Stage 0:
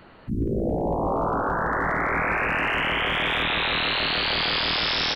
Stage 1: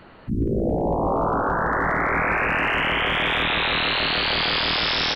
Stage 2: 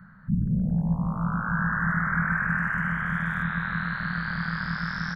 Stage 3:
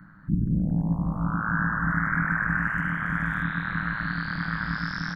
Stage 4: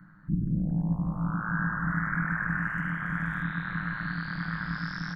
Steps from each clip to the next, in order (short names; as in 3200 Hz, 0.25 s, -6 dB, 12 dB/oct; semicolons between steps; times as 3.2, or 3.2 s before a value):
high shelf 6400 Hz -4 dB; gain +2.5 dB
EQ curve 100 Hz 0 dB, 180 Hz +14 dB, 350 Hz -27 dB, 510 Hz -18 dB, 760 Hz -15 dB, 1600 Hz +7 dB, 2700 Hz -28 dB, 6400 Hz -5 dB, 9200 Hz -1 dB; gain -5 dB
AM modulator 110 Hz, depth 45%; gain +3 dB
reverb RT60 0.90 s, pre-delay 6 ms, DRR 12.5 dB; gain -5 dB